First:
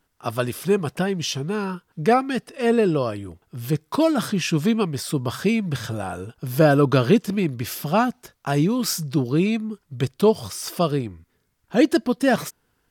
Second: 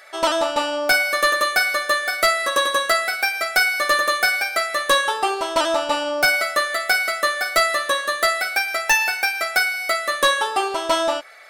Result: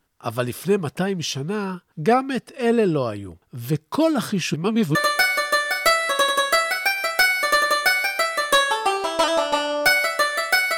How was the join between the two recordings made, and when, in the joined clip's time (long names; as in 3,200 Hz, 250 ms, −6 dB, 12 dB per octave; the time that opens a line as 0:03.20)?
first
0:04.54–0:04.95: reverse
0:04.95: continue with second from 0:01.32